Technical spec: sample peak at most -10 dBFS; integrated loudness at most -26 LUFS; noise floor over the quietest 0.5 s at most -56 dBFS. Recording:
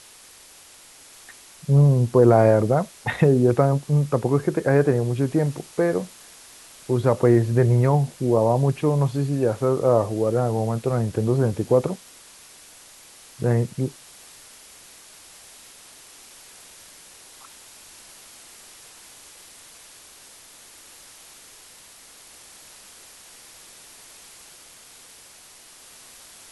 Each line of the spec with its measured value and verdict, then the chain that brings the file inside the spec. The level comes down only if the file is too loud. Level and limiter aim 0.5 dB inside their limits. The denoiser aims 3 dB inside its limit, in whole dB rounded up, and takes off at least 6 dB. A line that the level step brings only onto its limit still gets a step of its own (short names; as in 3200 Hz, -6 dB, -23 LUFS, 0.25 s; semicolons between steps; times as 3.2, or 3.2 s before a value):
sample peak -4.0 dBFS: fail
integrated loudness -21.0 LUFS: fail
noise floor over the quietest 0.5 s -48 dBFS: fail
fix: denoiser 6 dB, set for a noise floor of -48 dBFS; gain -5.5 dB; limiter -10.5 dBFS